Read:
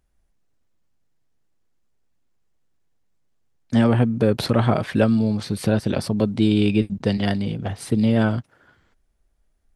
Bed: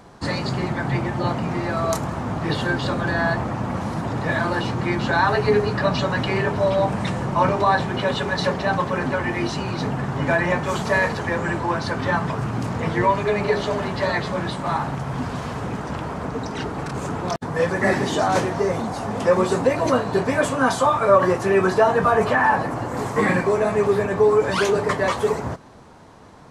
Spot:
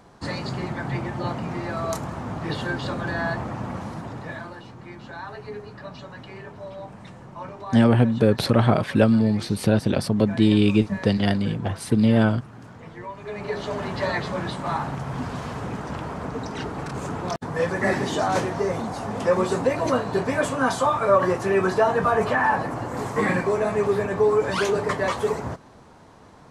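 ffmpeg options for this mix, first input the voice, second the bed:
-filter_complex "[0:a]adelay=4000,volume=0.5dB[a];[1:a]volume=10dB,afade=t=out:st=3.65:d=0.93:silence=0.223872,afade=t=in:st=13.16:d=0.79:silence=0.177828[b];[a][b]amix=inputs=2:normalize=0"

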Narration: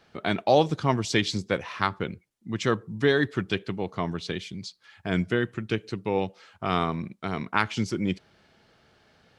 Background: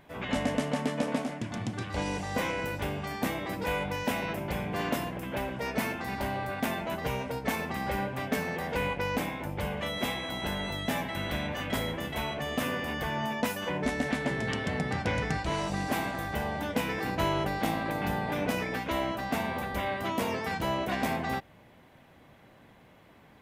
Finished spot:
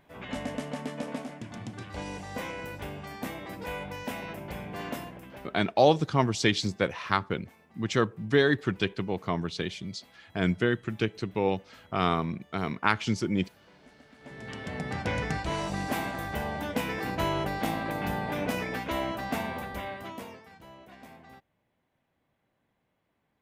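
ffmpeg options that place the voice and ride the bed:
-filter_complex "[0:a]adelay=5300,volume=-0.5dB[a];[1:a]volume=21dB,afade=t=out:st=4.97:d=0.65:silence=0.0841395,afade=t=in:st=14.17:d=0.95:silence=0.0473151,afade=t=out:st=19.32:d=1.13:silence=0.105925[b];[a][b]amix=inputs=2:normalize=0"

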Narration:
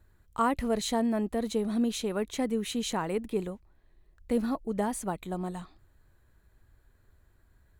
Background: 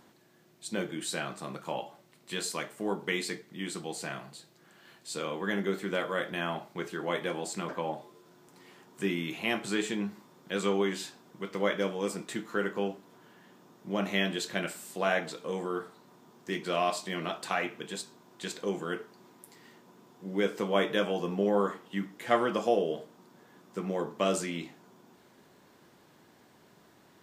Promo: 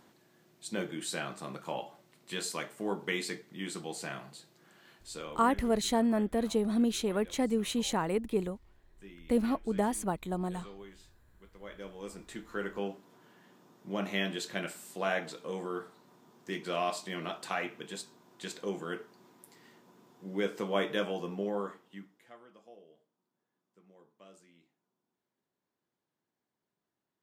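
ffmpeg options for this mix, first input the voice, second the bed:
-filter_complex "[0:a]adelay=5000,volume=0dB[a];[1:a]volume=15.5dB,afade=t=out:st=4.76:d=0.94:silence=0.112202,afade=t=in:st=11.6:d=1.35:silence=0.133352,afade=t=out:st=21:d=1.33:silence=0.0562341[b];[a][b]amix=inputs=2:normalize=0"

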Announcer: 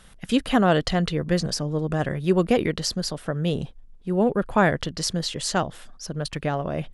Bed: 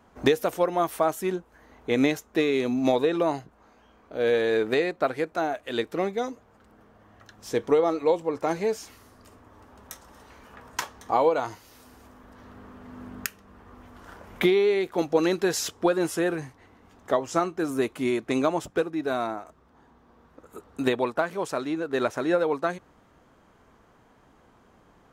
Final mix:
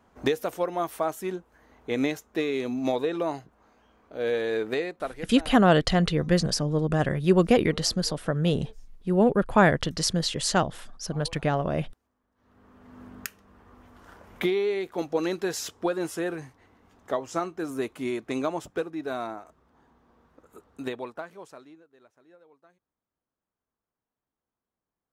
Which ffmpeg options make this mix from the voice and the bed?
-filter_complex "[0:a]adelay=5000,volume=0.5dB[a];[1:a]volume=18dB,afade=t=out:st=4.72:d=0.87:silence=0.0749894,afade=t=in:st=12.35:d=0.66:silence=0.0794328,afade=t=out:st=20.17:d=1.73:silence=0.0375837[b];[a][b]amix=inputs=2:normalize=0"

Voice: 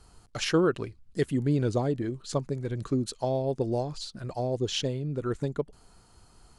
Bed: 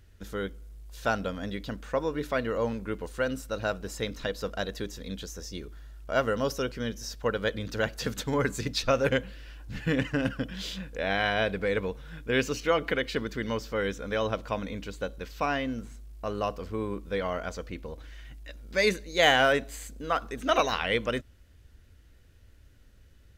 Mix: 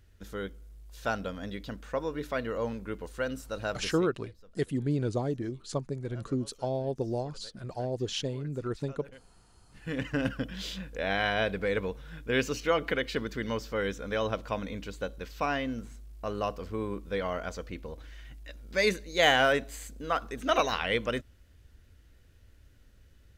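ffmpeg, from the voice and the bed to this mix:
-filter_complex "[0:a]adelay=3400,volume=-3.5dB[a];[1:a]volume=21dB,afade=t=out:st=3.83:d=0.27:silence=0.0749894,afade=t=in:st=9.71:d=0.47:silence=0.0595662[b];[a][b]amix=inputs=2:normalize=0"

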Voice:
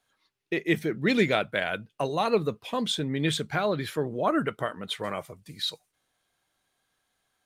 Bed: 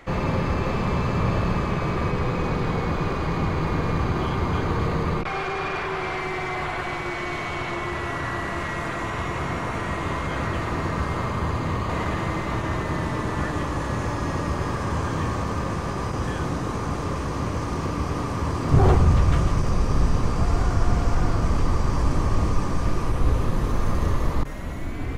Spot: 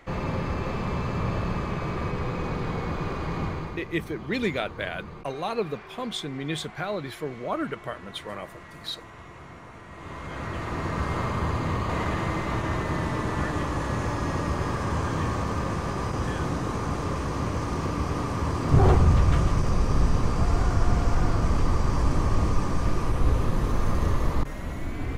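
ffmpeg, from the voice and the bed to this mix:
-filter_complex "[0:a]adelay=3250,volume=-4dB[a];[1:a]volume=10.5dB,afade=t=out:st=3.44:d=0.39:silence=0.251189,afade=t=in:st=9.9:d=1.26:silence=0.16788[b];[a][b]amix=inputs=2:normalize=0"

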